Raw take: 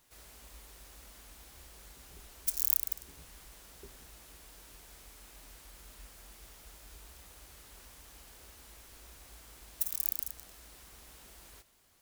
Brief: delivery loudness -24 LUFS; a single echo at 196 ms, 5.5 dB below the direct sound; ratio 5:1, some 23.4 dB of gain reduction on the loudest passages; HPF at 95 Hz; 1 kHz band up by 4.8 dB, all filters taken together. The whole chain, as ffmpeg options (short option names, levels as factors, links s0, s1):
-af "highpass=95,equalizer=f=1000:t=o:g=6,acompressor=threshold=0.00398:ratio=5,aecho=1:1:196:0.531,volume=22.4"